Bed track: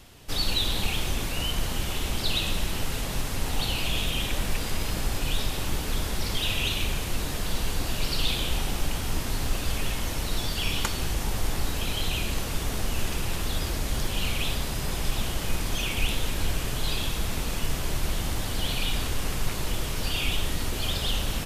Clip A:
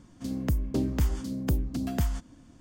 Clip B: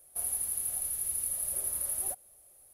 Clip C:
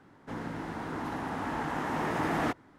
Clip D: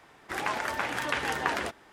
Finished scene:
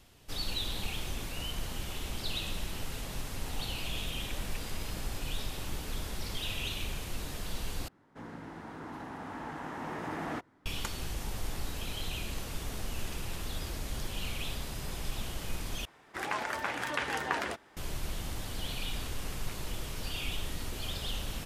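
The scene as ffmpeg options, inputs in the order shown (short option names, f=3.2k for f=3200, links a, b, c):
-filter_complex "[0:a]volume=-9dB,asplit=3[a][b][c];[a]atrim=end=7.884[d];[3:a]atrim=end=2.78,asetpts=PTS-STARTPTS,volume=-7.5dB[e];[b]atrim=start=10.656:end=15.854[f];[4:a]atrim=end=1.92,asetpts=PTS-STARTPTS,volume=-3.5dB[g];[c]atrim=start=17.766[h];[d][e]acrossfade=d=0.004:c1=hsin:c2=hsin[i];[i][f]acrossfade=d=0.004:c1=hsin:c2=hsin[j];[j][g]acrossfade=d=0.004:c1=hsin:c2=hsin[k];[k][h]acrossfade=d=0.004:c1=hsin:c2=hsin"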